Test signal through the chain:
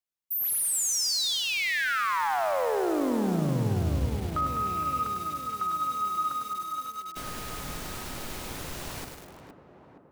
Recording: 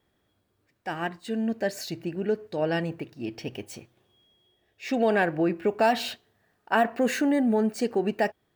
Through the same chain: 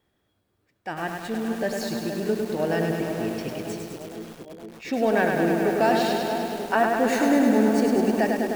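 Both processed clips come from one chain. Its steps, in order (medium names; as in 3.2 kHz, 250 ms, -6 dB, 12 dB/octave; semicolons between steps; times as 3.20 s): tape echo 468 ms, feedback 77%, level -6 dB, low-pass 1.1 kHz; dynamic bell 2.9 kHz, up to -4 dB, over -48 dBFS, Q 4.8; bit-crushed delay 102 ms, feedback 80%, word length 7-bit, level -4 dB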